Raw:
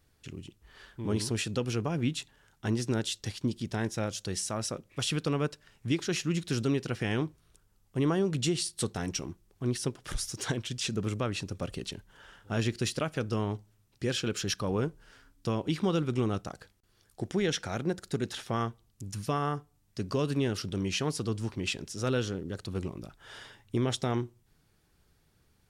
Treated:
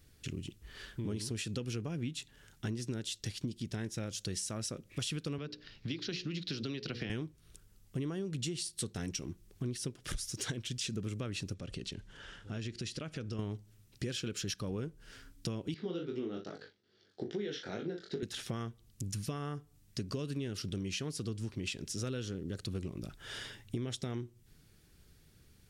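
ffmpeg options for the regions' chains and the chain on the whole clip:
-filter_complex "[0:a]asettb=1/sr,asplit=3[a][b][c];[a]atrim=end=5.384[d];[b]atrim=start=5.38:end=7.1,asetpts=PTS-STARTPTS,afade=t=in:d=0.004:c=qsin,afade=t=out:st=1.716:d=0.004:c=qsin,bandreject=f=60:t=h:w=6,bandreject=f=120:t=h:w=6,bandreject=f=180:t=h:w=6,bandreject=f=240:t=h:w=6,bandreject=f=300:t=h:w=6,bandreject=f=360:t=h:w=6,bandreject=f=420:t=h:w=6,bandreject=f=480:t=h:w=6,bandreject=f=540:t=h:w=6,acrossover=split=160|620[e][f][g];[e]acompressor=threshold=-47dB:ratio=4[h];[f]acompressor=threshold=-35dB:ratio=4[i];[g]acompressor=threshold=-40dB:ratio=4[j];[h][i][j]amix=inputs=3:normalize=0,highshelf=f=6.3k:t=q:w=3:g=-13[k];[c]atrim=start=7.096[l];[d][k]acrossfade=d=0.004:c1=hsin:c2=qsin[m];[m][l]acrossfade=d=0.004:c1=qsin:c2=hsin,asettb=1/sr,asplit=3[n][o][p];[n]atrim=end=11.544[q];[o]atrim=start=11.54:end=13.39,asetpts=PTS-STARTPTS,afade=t=in:d=0.004:c=qsin,afade=t=out:st=1.846:d=0.004:c=qsin,lowpass=7.1k,acompressor=threshold=-47dB:ratio=2:attack=3.2:release=140:knee=1:detection=peak[r];[p]atrim=start=13.386[s];[q][r]acrossfade=d=0.004:c1=hsin:c2=qsin[t];[t][s]acrossfade=d=0.004:c1=qsin:c2=hsin,asettb=1/sr,asplit=3[u][v][w];[u]atrim=end=15.744[x];[v]atrim=start=15.74:end=18.23,asetpts=PTS-STARTPTS,afade=t=in:d=0.004:c=qsin,afade=t=out:st=2.486:d=0.004:c=qsin,asplit=2[y][z];[z]adelay=39,volume=-8dB[aa];[y][aa]amix=inputs=2:normalize=0,atrim=end_sample=109809,flanger=delay=18.5:depth=4.9:speed=2.4,highpass=230,equalizer=f=410:t=q:w=4:g=6,equalizer=f=1.1k:t=q:w=4:g=-5,equalizer=f=2.5k:t=q:w=4:g=-6,lowpass=f=4.6k:w=0.5412,lowpass=f=4.6k:w=1.3066[ab];[w]atrim=start=18.226[ac];[x][ab]acrossfade=d=0.004:c1=hsin:c2=qsin[ad];[ad][ac]acrossfade=d=0.004:c1=qsin:c2=hsin,equalizer=f=890:t=o:w=1.4:g=-9.5,acompressor=threshold=-42dB:ratio=5,volume=6dB"

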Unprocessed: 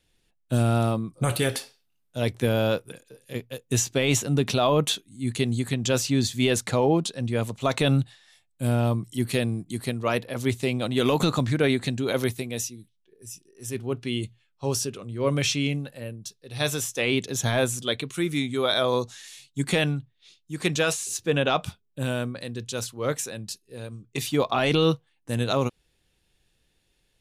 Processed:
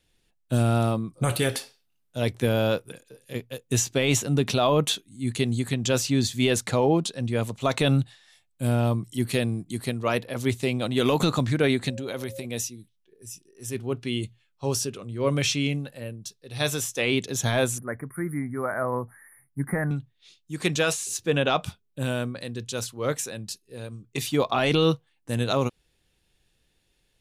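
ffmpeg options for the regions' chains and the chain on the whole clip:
-filter_complex "[0:a]asettb=1/sr,asplit=3[a][b][c];[a]atrim=end=11.904[d];[b]atrim=start=11.9:end=12.45,asetpts=PTS-STARTPTS,afade=t=in:d=0.004:c=qsin,afade=t=out:st=0.546:d=0.004:c=qsin,aeval=exprs='val(0)+0.0178*sin(2*PI*540*n/s)':c=same,acompressor=threshold=-31dB:ratio=2.5:attack=3.2:release=140:knee=1:detection=peak[e];[c]atrim=start=12.446[f];[d][e]acrossfade=d=0.004:c1=hsin:c2=qsin[g];[g][f]acrossfade=d=0.004:c1=qsin:c2=hsin,asettb=1/sr,asplit=3[h][i][j];[h]atrim=end=17.784[k];[i]atrim=start=17.78:end=19.91,asetpts=PTS-STARTPTS,afade=t=in:d=0.004:c=qsin,afade=t=out:st=2.126:d=0.004:c=qsin,asuperstop=centerf=4600:order=20:qfactor=0.61,equalizer=f=430:w=1.2:g=-6.5[l];[j]atrim=start=19.906[m];[k][l]acrossfade=d=0.004:c1=hsin:c2=qsin[n];[n][m]acrossfade=d=0.004:c1=qsin:c2=hsin"

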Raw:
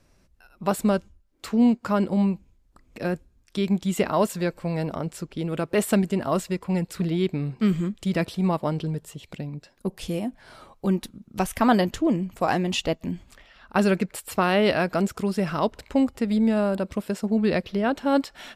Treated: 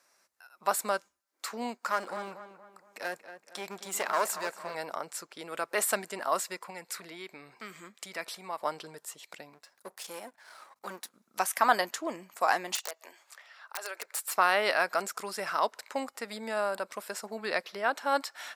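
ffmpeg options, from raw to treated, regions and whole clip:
-filter_complex "[0:a]asettb=1/sr,asplit=3[a][b][c];[a]atrim=end=1.814[d];[b]atrim=start=1.81:end=4.75,asetpts=PTS-STARTPTS,afade=t=in:d=0.004:c=qsin,afade=t=out:st=2.936:d=0.004:c=qsin,aeval=exprs='clip(val(0),-1,0.0422)':c=same,asplit=2[e][f];[f]adelay=233,lowpass=f=2.7k:p=1,volume=-11dB,asplit=2[g][h];[h]adelay=233,lowpass=f=2.7k:p=1,volume=0.44,asplit=2[i][j];[j]adelay=233,lowpass=f=2.7k:p=1,volume=0.44,asplit=2[k][l];[l]adelay=233,lowpass=f=2.7k:p=1,volume=0.44,asplit=2[m][n];[n]adelay=233,lowpass=f=2.7k:p=1,volume=0.44[o];[e][g][i][k][m][o]amix=inputs=6:normalize=0,atrim=end_sample=129654[p];[c]atrim=start=4.746[q];[d][p]acrossfade=d=0.004:c1=hsin:c2=qsin[r];[r][q]acrossfade=d=0.004:c1=qsin:c2=hsin,asettb=1/sr,asplit=3[s][t][u];[s]atrim=end=6.704[v];[t]atrim=start=6.7:end=8.61,asetpts=PTS-STARTPTS,afade=t=in:d=0.004:c=qsin,afade=t=out:st=1.906:d=0.004:c=qsin,equalizer=f=2.2k:t=o:w=0.29:g=4.5,acompressor=threshold=-31dB:ratio=2:attack=3.2:release=140:knee=1:detection=peak[w];[u]atrim=start=8.606[x];[v][w]acrossfade=d=0.004:c1=hsin:c2=qsin[y];[y][x]acrossfade=d=0.004:c1=qsin:c2=hsin,asettb=1/sr,asplit=3[z][aa][ab];[z]atrim=end=9.534[ac];[aa]atrim=start=9.53:end=11.14,asetpts=PTS-STARTPTS,afade=t=in:d=0.004:c=qsin,afade=t=out:st=1.606:d=0.004:c=qsin,aeval=exprs='if(lt(val(0),0),0.251*val(0),val(0))':c=same,aeval=exprs='val(0)+0.000794*(sin(2*PI*50*n/s)+sin(2*PI*2*50*n/s)/2+sin(2*PI*3*50*n/s)/3+sin(2*PI*4*50*n/s)/4+sin(2*PI*5*50*n/s)/5)':c=same[ad];[ab]atrim=start=11.136[ae];[ac][ad]acrossfade=d=0.004:c1=hsin:c2=qsin[af];[af][ae]acrossfade=d=0.004:c1=qsin:c2=hsin,asettb=1/sr,asplit=3[ag][ah][ai];[ag]atrim=end=12.754[aj];[ah]atrim=start=12.75:end=14.33,asetpts=PTS-STARTPTS,afade=t=in:d=0.004:c=qsin,afade=t=out:st=1.576:d=0.004:c=qsin,highpass=f=420:w=0.5412,highpass=f=420:w=1.3066,acompressor=threshold=-30dB:ratio=16:attack=3.2:release=140:knee=1:detection=peak,aeval=exprs='(mod(20*val(0)+1,2)-1)/20':c=same[ak];[ai]atrim=start=14.326[al];[aj][ak]acrossfade=d=0.004:c1=hsin:c2=qsin[am];[am][al]acrossfade=d=0.004:c1=qsin:c2=hsin,highpass=1k,equalizer=f=3k:w=1.6:g=-8.5,volume=3.5dB"

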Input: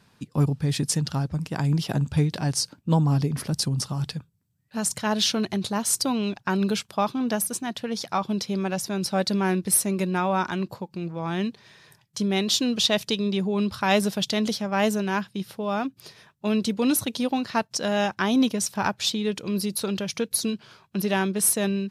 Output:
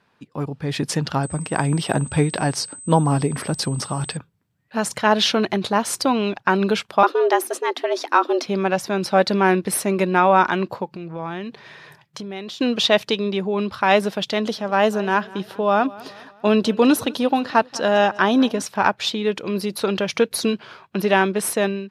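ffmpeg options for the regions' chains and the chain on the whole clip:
-filter_complex "[0:a]asettb=1/sr,asplit=3[a][b][c];[a]atrim=end=1.234[d];[b]atrim=start=1.23:end=4.17,asetpts=PTS-STARTPTS,afade=t=in:d=0.004:c=qsin,afade=t=out:st=2.936:d=0.004:c=qsin,aeval=exprs='val(0)+0.0224*sin(2*PI*8200*n/s)':c=same,asoftclip=type=hard:threshold=-12.5dB[e];[c]atrim=start=4.166[f];[d][e]acrossfade=d=0.004:c1=hsin:c2=qsin[g];[g][f]acrossfade=d=0.004:c1=qsin:c2=hsin,asettb=1/sr,asplit=3[h][i][j];[h]atrim=end=7.034[k];[i]atrim=start=7.03:end=8.46,asetpts=PTS-STARTPTS,afade=t=in:d=0.004:c=qsin,afade=t=out:st=1.426:d=0.004:c=qsin,asubboost=boost=7.5:cutoff=100,afreqshift=170[l];[j]atrim=start=8.456[m];[k][l]acrossfade=d=0.004:c1=hsin:c2=qsin[n];[n][m]acrossfade=d=0.004:c1=qsin:c2=hsin,asettb=1/sr,asplit=3[o][p][q];[o]atrim=end=10.854[r];[p]atrim=start=10.85:end=12.61,asetpts=PTS-STARTPTS,afade=t=in:d=0.004:c=qsin,afade=t=out:st=1.756:d=0.004:c=qsin,equalizer=f=150:t=o:w=0.23:g=8.5,acompressor=threshold=-33dB:ratio=12:attack=3.2:release=140:knee=1:detection=peak[s];[q]atrim=start=12.606[t];[r][s]acrossfade=d=0.004:c1=hsin:c2=qsin[u];[u][t]acrossfade=d=0.004:c1=qsin:c2=hsin,asettb=1/sr,asplit=3[v][w][x];[v]atrim=end=14.384[y];[w]atrim=start=14.38:end=18.62,asetpts=PTS-STARTPTS,afade=t=in:d=0.004:c=qsin,afade=t=out:st=4.236:d=0.004:c=qsin,equalizer=f=2.2k:t=o:w=0.24:g=-7,aecho=1:1:201|402|603:0.0891|0.041|0.0189,atrim=end_sample=186984[z];[x]atrim=start=18.616[aa];[y][z]acrossfade=d=0.004:c1=hsin:c2=qsin[ab];[ab][aa]acrossfade=d=0.004:c1=qsin:c2=hsin,bass=f=250:g=-11,treble=f=4k:g=-14,dynaudnorm=f=480:g=3:m=12dB"

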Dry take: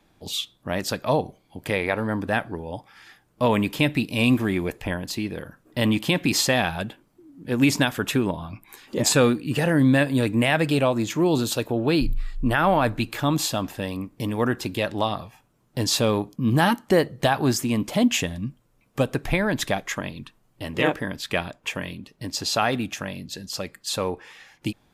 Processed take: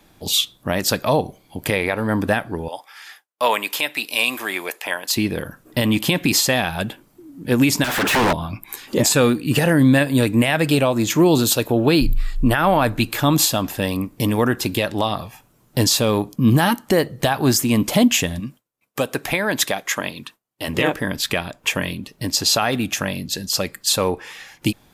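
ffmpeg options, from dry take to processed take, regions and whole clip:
-filter_complex "[0:a]asettb=1/sr,asplit=3[a][b][c];[a]atrim=end=2.684[d];[b]atrim=start=2.68:end=5.16,asetpts=PTS-STARTPTS,afade=t=in:d=0.004:c=qsin,afade=t=out:st=2.476:d=0.004:c=qsin,highpass=730,agate=range=-33dB:threshold=-56dB:ratio=3:release=100:detection=peak[e];[c]atrim=start=5.156[f];[d][e]acrossfade=d=0.004:c1=hsin:c2=qsin[g];[g][f]acrossfade=d=0.004:c1=qsin:c2=hsin,asettb=1/sr,asplit=3[h][i][j];[h]atrim=end=7.844[k];[i]atrim=start=7.84:end=8.33,asetpts=PTS-STARTPTS,afade=t=in:d=0.004:c=qsin,afade=t=out:st=0.486:d=0.004:c=qsin,acompressor=threshold=-29dB:ratio=2.5:attack=3.2:release=140:knee=1:detection=peak,aeval=exprs='0.0335*(abs(mod(val(0)/0.0335+3,4)-2)-1)':c=same,asplit=2[l][m];[m]highpass=f=720:p=1,volume=38dB,asoftclip=type=tanh:threshold=-16.5dB[n];[l][n]amix=inputs=2:normalize=0,lowpass=f=2.2k:p=1,volume=-6dB[o];[j]atrim=start=8.326[p];[k][o]acrossfade=d=0.004:c1=hsin:c2=qsin[q];[q][p]acrossfade=d=0.004:c1=qsin:c2=hsin,asettb=1/sr,asplit=3[r][s][t];[r]atrim=end=18.404[u];[s]atrim=start=18.4:end=20.68,asetpts=PTS-STARTPTS,afade=t=in:d=0.004:c=qsin,afade=t=out:st=2.276:d=0.004:c=qsin,highpass=f=390:p=1,agate=range=-33dB:threshold=-59dB:ratio=3:release=100:detection=peak[v];[t]atrim=start=20.676[w];[u][v]acrossfade=d=0.004:c1=hsin:c2=qsin[x];[x][w]acrossfade=d=0.004:c1=qsin:c2=hsin,highshelf=f=4.7k:g=5.5,alimiter=limit=-14dB:level=0:latency=1:release=312,equalizer=f=13k:t=o:w=0.33:g=4,volume=7.5dB"

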